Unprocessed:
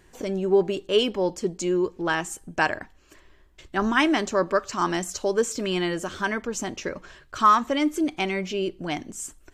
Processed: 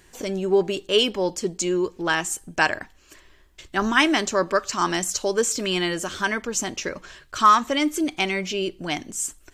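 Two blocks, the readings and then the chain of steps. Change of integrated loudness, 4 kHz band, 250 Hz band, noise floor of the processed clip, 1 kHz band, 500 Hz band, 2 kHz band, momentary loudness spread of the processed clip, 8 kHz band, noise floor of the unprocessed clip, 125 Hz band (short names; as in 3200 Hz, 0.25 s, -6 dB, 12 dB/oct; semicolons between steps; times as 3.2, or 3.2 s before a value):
+2.0 dB, +6.0 dB, 0.0 dB, -55 dBFS, +2.0 dB, +0.5 dB, +3.5 dB, 10 LU, +7.5 dB, -56 dBFS, 0.0 dB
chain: high shelf 2000 Hz +8 dB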